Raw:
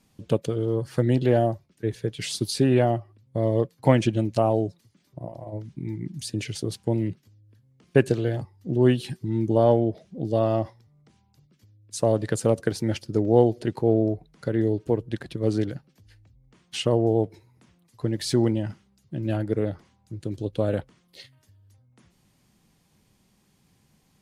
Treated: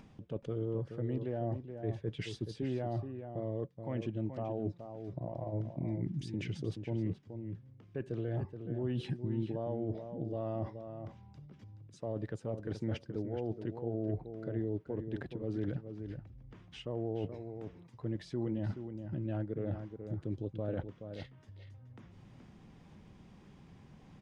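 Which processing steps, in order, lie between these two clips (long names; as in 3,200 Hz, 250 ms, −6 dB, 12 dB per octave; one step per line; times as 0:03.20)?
notch filter 4,300 Hz, Q 11
reversed playback
downward compressor 12 to 1, threshold −31 dBFS, peak gain reduction 20.5 dB
reversed playback
brickwall limiter −27 dBFS, peak gain reduction 6.5 dB
upward compression, threshold −47 dBFS
head-to-tape spacing loss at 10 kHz 25 dB
slap from a distant wall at 73 metres, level −8 dB
level +1 dB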